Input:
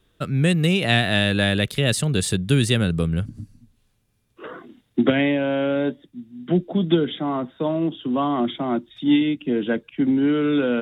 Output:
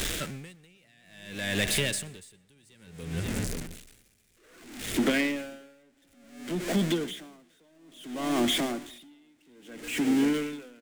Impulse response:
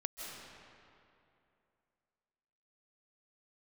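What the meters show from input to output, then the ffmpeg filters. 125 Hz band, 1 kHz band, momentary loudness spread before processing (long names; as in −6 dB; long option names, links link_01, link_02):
−15.0 dB, −10.5 dB, 9 LU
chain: -filter_complex "[0:a]aeval=exprs='val(0)+0.5*0.0596*sgn(val(0))':channel_layout=same,equalizer=frequency=125:width_type=o:width=1:gain=-8,equalizer=frequency=1000:width_type=o:width=1:gain=-8,equalizer=frequency=2000:width_type=o:width=1:gain=6,equalizer=frequency=8000:width_type=o:width=1:gain=7,acompressor=threshold=-21dB:ratio=2.5,asoftclip=type=tanh:threshold=-16.5dB,asplit=2[link_01][link_02];[link_02]adelay=536.4,volume=-12dB,highshelf=frequency=4000:gain=-12.1[link_03];[link_01][link_03]amix=inputs=2:normalize=0,asplit=2[link_04][link_05];[1:a]atrim=start_sample=2205,adelay=123[link_06];[link_05][link_06]afir=irnorm=-1:irlink=0,volume=-16dB[link_07];[link_04][link_07]amix=inputs=2:normalize=0,aeval=exprs='val(0)*pow(10,-37*(0.5-0.5*cos(2*PI*0.59*n/s))/20)':channel_layout=same"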